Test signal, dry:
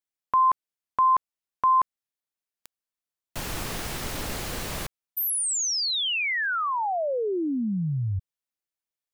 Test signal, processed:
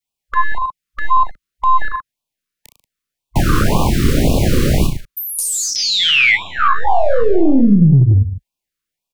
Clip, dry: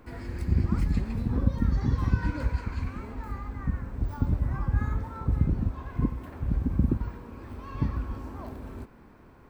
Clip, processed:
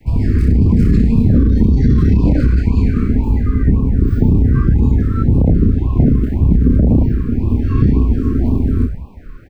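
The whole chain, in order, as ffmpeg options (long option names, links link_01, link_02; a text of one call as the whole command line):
ffmpeg -i in.wav -filter_complex "[0:a]acrossover=split=250|800[link_01][link_02][link_03];[link_02]aeval=exprs='max(val(0),0)':channel_layout=same[link_04];[link_01][link_04][link_03]amix=inputs=3:normalize=0,adynamicequalizer=threshold=0.00562:dfrequency=600:dqfactor=0.92:tfrequency=600:tqfactor=0.92:attack=5:release=100:ratio=0.375:range=2:mode=cutabove:tftype=bell,asplit=2[link_05][link_06];[link_06]aecho=0:1:30|63|99.3|139.2|183.2:0.631|0.398|0.251|0.158|0.1[link_07];[link_05][link_07]amix=inputs=2:normalize=0,acompressor=threshold=-23dB:ratio=16:attack=0.81:release=25:knee=1:detection=peak,highshelf=frequency=3800:gain=-5.5,afwtdn=0.0224,acrossover=split=240|1800[link_08][link_09][link_10];[link_08]acompressor=threshold=-39dB:ratio=5[link_11];[link_09]acompressor=threshold=-41dB:ratio=8[link_12];[link_10]acompressor=threshold=-51dB:ratio=2.5[link_13];[link_11][link_12][link_13]amix=inputs=3:normalize=0,aeval=exprs='0.0668*(cos(1*acos(clip(val(0)/0.0668,-1,1)))-cos(1*PI/2))+0.00106*(cos(6*acos(clip(val(0)/0.0668,-1,1)))-cos(6*PI/2))':channel_layout=same,alimiter=level_in=28.5dB:limit=-1dB:release=50:level=0:latency=1,afftfilt=real='re*(1-between(b*sr/1024,720*pow(1700/720,0.5+0.5*sin(2*PI*1.9*pts/sr))/1.41,720*pow(1700/720,0.5+0.5*sin(2*PI*1.9*pts/sr))*1.41))':imag='im*(1-between(b*sr/1024,720*pow(1700/720,0.5+0.5*sin(2*PI*1.9*pts/sr))/1.41,720*pow(1700/720,0.5+0.5*sin(2*PI*1.9*pts/sr))*1.41))':win_size=1024:overlap=0.75,volume=-1dB" out.wav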